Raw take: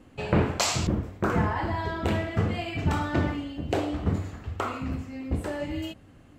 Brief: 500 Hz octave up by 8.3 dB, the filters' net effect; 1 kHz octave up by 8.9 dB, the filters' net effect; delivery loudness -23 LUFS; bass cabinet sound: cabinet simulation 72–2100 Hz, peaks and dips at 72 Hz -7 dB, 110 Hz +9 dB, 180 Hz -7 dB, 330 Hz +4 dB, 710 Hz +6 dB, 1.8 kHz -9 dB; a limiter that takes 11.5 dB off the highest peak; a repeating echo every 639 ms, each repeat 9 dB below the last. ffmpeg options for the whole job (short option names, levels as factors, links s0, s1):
-af "equalizer=f=500:t=o:g=5.5,equalizer=f=1000:t=o:g=7,alimiter=limit=0.158:level=0:latency=1,highpass=f=72:w=0.5412,highpass=f=72:w=1.3066,equalizer=f=72:t=q:w=4:g=-7,equalizer=f=110:t=q:w=4:g=9,equalizer=f=180:t=q:w=4:g=-7,equalizer=f=330:t=q:w=4:g=4,equalizer=f=710:t=q:w=4:g=6,equalizer=f=1800:t=q:w=4:g=-9,lowpass=f=2100:w=0.5412,lowpass=f=2100:w=1.3066,aecho=1:1:639|1278|1917|2556:0.355|0.124|0.0435|0.0152,volume=1.41"